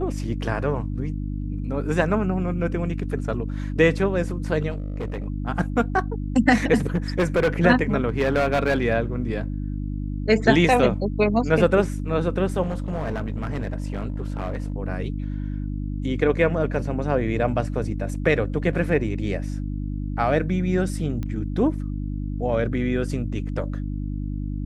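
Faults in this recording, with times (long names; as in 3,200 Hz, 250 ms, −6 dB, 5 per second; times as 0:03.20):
mains hum 50 Hz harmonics 6 −28 dBFS
0:04.70–0:05.26: clipping −24.5 dBFS
0:06.86–0:07.48: clipping −15.5 dBFS
0:08.08–0:08.84: clipping −15.5 dBFS
0:12.62–0:14.74: clipping −22.5 dBFS
0:21.23: click −19 dBFS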